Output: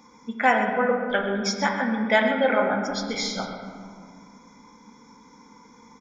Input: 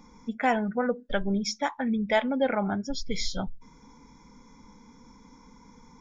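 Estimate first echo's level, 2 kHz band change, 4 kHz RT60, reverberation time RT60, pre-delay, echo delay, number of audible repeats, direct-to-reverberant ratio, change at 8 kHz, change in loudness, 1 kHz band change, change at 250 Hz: -12.0 dB, +9.0 dB, 1.1 s, 2.1 s, 4 ms, 128 ms, 1, 1.5 dB, no reading, +5.0 dB, +6.0 dB, +1.5 dB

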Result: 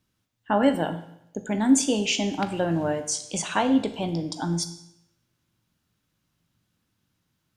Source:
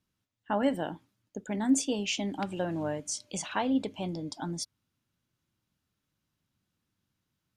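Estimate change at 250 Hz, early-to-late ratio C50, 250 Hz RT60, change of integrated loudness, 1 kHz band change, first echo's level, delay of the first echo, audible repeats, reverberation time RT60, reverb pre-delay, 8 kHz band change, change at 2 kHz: +7.0 dB, 11.5 dB, 0.80 s, +7.0 dB, +7.0 dB, no echo, no echo, no echo, 0.80 s, 17 ms, +7.0 dB, +7.0 dB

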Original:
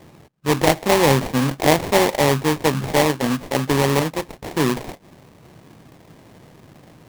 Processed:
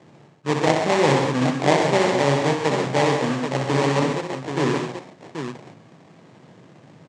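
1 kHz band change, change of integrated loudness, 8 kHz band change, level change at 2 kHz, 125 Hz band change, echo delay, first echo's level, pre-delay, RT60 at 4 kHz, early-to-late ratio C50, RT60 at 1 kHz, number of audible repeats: -1.0 dB, -1.5 dB, -6.5 dB, -1.5 dB, -2.0 dB, 63 ms, -5.5 dB, no reverb, no reverb, no reverb, no reverb, 4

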